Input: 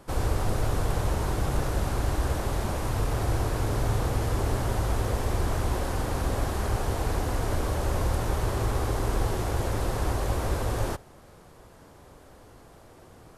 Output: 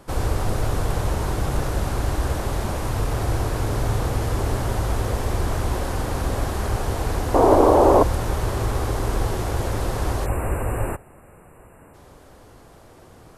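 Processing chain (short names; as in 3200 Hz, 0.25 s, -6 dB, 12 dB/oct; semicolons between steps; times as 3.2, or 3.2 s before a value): 7.34–8.03 band shelf 540 Hz +16 dB 2.4 oct; 10.26–11.94 spectral delete 2900–7200 Hz; gain +3.5 dB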